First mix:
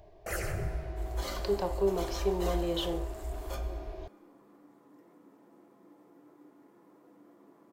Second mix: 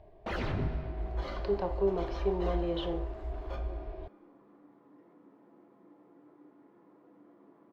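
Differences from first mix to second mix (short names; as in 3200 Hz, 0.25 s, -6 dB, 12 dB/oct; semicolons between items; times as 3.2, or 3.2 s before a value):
first sound: remove fixed phaser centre 970 Hz, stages 6; master: add air absorption 290 m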